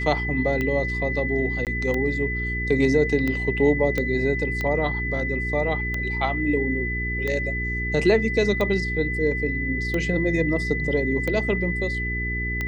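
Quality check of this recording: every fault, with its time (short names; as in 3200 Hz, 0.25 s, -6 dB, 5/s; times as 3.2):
hum 60 Hz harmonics 7 -29 dBFS
tick 45 rpm -14 dBFS
tone 2000 Hz -27 dBFS
1.65–1.67 gap 18 ms
3.98 pop -12 dBFS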